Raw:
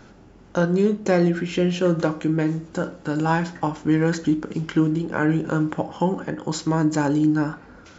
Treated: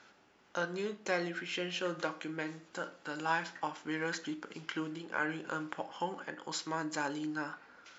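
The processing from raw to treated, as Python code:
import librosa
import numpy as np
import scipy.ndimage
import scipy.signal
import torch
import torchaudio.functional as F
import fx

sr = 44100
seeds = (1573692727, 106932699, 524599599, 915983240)

y = fx.bandpass_q(x, sr, hz=2800.0, q=0.57)
y = F.gain(torch.from_numpy(y), -4.5).numpy()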